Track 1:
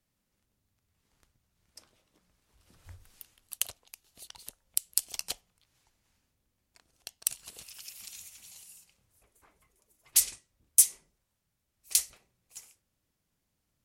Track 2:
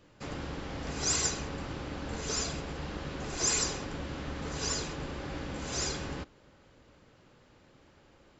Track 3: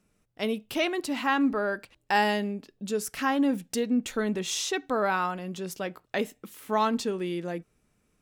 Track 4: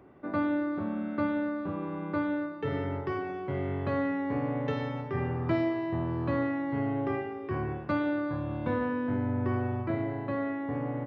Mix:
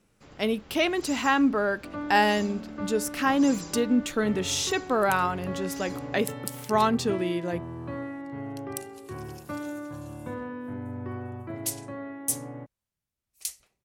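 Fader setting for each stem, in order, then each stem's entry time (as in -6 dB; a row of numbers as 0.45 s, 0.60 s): -8.0 dB, -12.0 dB, +2.5 dB, -6.0 dB; 1.50 s, 0.00 s, 0.00 s, 1.60 s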